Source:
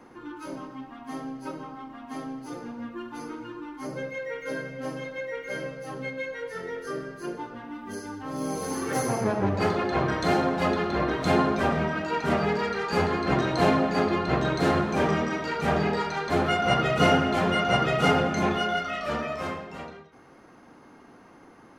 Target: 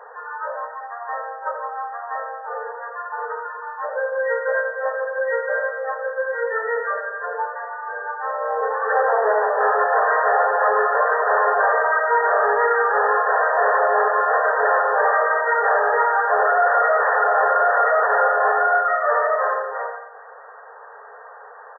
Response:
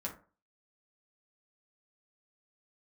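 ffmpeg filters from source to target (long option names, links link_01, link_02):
-af "tiltshelf=frequency=650:gain=-3.5,aecho=1:1:87|174|261|348|435|522:0.316|0.171|0.0922|0.0498|0.0269|0.0145,aresample=11025,aeval=exprs='0.447*sin(PI/2*4.47*val(0)/0.447)':channel_layout=same,aresample=44100,afftfilt=real='re*between(b*sr/4096,410,1900)':imag='im*between(b*sr/4096,410,1900)':win_size=4096:overlap=0.75,volume=-4.5dB"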